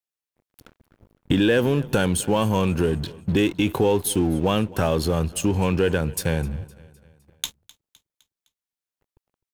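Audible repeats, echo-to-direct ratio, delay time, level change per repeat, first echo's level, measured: 3, -20.5 dB, 256 ms, -6.0 dB, -21.5 dB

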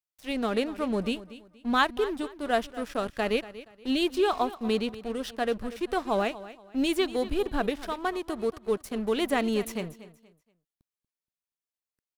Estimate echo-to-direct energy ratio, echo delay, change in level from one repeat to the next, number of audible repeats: -15.5 dB, 237 ms, -10.5 dB, 2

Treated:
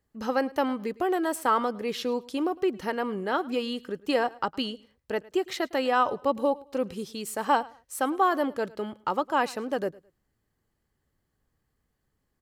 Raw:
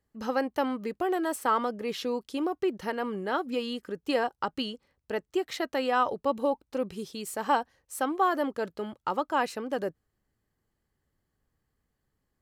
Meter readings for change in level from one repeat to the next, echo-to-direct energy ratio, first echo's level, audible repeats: -12.0 dB, -21.5 dB, -22.0 dB, 2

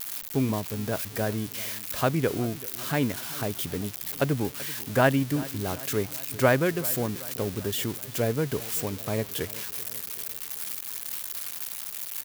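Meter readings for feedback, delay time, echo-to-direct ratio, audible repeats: 58%, 384 ms, -17.0 dB, 4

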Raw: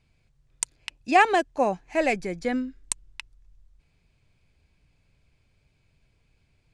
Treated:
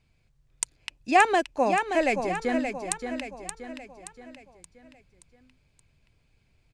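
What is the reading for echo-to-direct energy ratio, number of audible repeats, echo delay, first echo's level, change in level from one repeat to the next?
-6.0 dB, 5, 575 ms, -7.0 dB, -6.5 dB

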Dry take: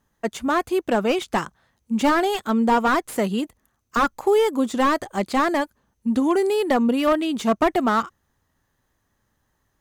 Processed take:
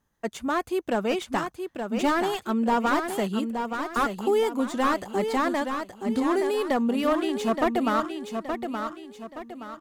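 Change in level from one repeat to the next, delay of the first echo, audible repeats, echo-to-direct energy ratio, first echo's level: -8.0 dB, 872 ms, 4, -6.0 dB, -6.5 dB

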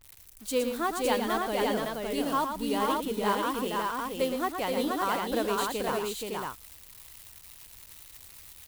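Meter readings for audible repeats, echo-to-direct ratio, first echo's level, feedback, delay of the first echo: 3, 0.5 dB, -7.0 dB, no regular repeats, 115 ms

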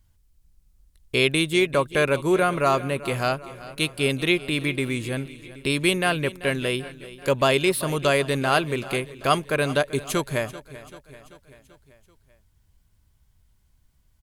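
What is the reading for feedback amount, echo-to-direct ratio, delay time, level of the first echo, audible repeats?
57%, -15.5 dB, 387 ms, -17.0 dB, 4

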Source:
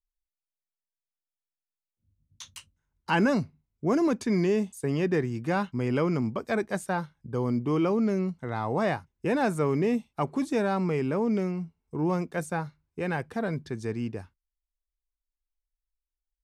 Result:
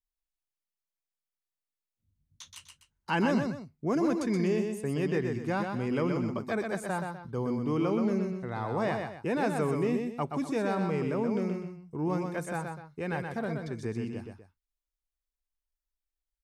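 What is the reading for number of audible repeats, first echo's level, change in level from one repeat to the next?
2, -5.0 dB, -9.0 dB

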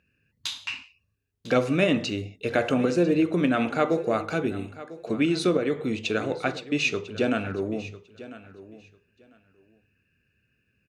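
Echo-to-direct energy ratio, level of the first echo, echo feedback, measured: -17.0 dB, -17.0 dB, 17%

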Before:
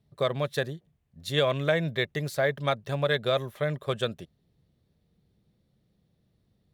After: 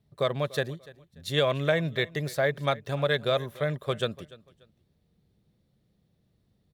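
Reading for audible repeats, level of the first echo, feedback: 2, -20.5 dB, 28%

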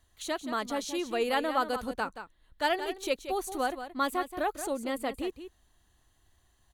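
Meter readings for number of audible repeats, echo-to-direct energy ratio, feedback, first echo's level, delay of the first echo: 1, -10.5 dB, no regular repeats, -10.5 dB, 177 ms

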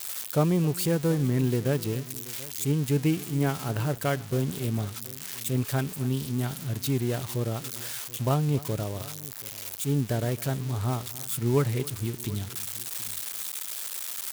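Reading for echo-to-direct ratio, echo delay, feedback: -16.5 dB, 267 ms, no regular repeats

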